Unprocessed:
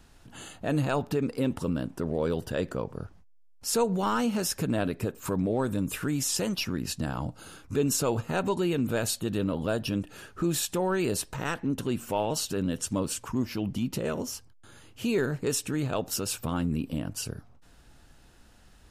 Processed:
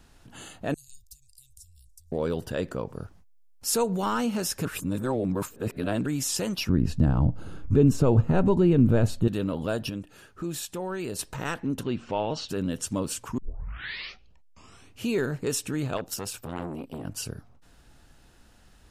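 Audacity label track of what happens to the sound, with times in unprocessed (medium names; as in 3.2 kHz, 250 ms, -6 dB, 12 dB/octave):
0.740000	2.120000	inverse Chebyshev band-stop 260–1300 Hz, stop band 80 dB
2.860000	4.050000	treble shelf 6.3 kHz -> 9.2 kHz +6.5 dB
4.650000	6.060000	reverse
6.690000	9.280000	tilt EQ -4 dB/octave
9.900000	11.190000	gain -5.5 dB
11.830000	12.490000	low-pass 4.9 kHz 24 dB/octave
13.380000	13.380000	tape start 1.67 s
15.970000	17.040000	transformer saturation saturates under 780 Hz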